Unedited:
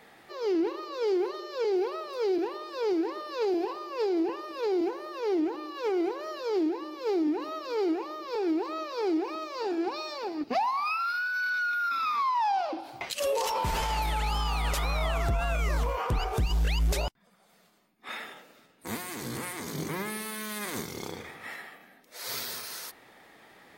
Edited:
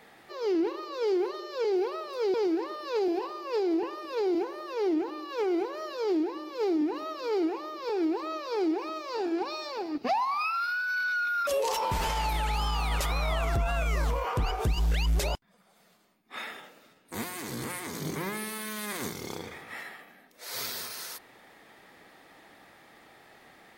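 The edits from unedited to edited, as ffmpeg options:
-filter_complex "[0:a]asplit=3[a][b][c];[a]atrim=end=2.342[d];[b]atrim=start=2.798:end=11.932[e];[c]atrim=start=13.198[f];[d][e]acrossfade=d=0.004:c1=hsin:c2=hsin[g];[g][f]acrossfade=d=0.004:c1=hsin:c2=hsin"

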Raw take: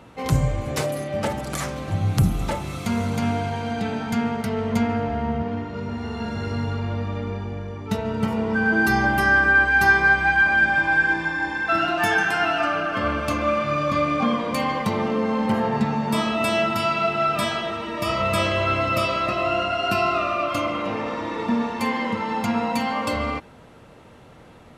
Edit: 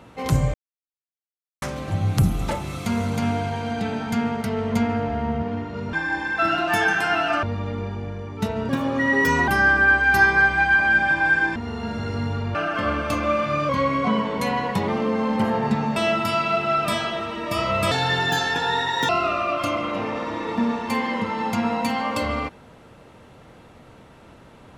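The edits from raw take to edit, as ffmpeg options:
-filter_complex "[0:a]asplit=14[a][b][c][d][e][f][g][h][i][j][k][l][m][n];[a]atrim=end=0.54,asetpts=PTS-STARTPTS,afade=t=out:st=0.536:d=0.004:c=hsin[o];[b]atrim=start=0.54:end=1.62,asetpts=PTS-STARTPTS,volume=0[p];[c]atrim=start=1.62:end=5.932,asetpts=PTS-STARTPTS,afade=t=in:d=0.004:c=hsin[q];[d]atrim=start=11.228:end=12.732[r];[e]atrim=start=6.918:end=8.184[s];[f]atrim=start=8.18:end=9.15,asetpts=PTS-STARTPTS,asetrate=54243,aresample=44100,atrim=end_sample=34778,asetpts=PTS-STARTPTS[t];[g]atrim=start=9.146:end=11.232[u];[h]atrim=start=5.928:end=6.922[v];[i]atrim=start=12.728:end=13.874[w];[j]atrim=start=13.87:end=14.98,asetpts=PTS-STARTPTS,asetrate=41013,aresample=44100,atrim=end_sample=52635,asetpts=PTS-STARTPTS[x];[k]atrim=start=14.976:end=16.062[y];[l]atrim=start=16.468:end=18.424[z];[m]atrim=start=18.42:end=20,asetpts=PTS-STARTPTS,asetrate=59094,aresample=44100[aa];[n]atrim=start=19.996[ab];[o][p][q]concat=n=3:v=0:a=1[ac];[ac][r]acrossfade=d=0.004:c1=hsin:c2=hsin[ad];[ad][s]acrossfade=d=0.004:c1=hsin:c2=hsin[ae];[ae][t]acrossfade=d=0.004:c1=hsin:c2=hsin[af];[af][u]acrossfade=d=0.004:c1=hsin:c2=hsin[ag];[ag][v]acrossfade=d=0.004:c1=hsin:c2=hsin[ah];[ah][w]acrossfade=d=0.004:c1=hsin:c2=hsin[ai];[ai][x]acrossfade=d=0.004:c1=hsin:c2=hsin[aj];[aj][y]acrossfade=d=0.004:c1=hsin:c2=hsin[ak];[ak][z]acrossfade=d=0.004:c1=hsin:c2=hsin[al];[al][aa]acrossfade=d=0.004:c1=hsin:c2=hsin[am];[am][ab]acrossfade=d=0.004:c1=hsin:c2=hsin"

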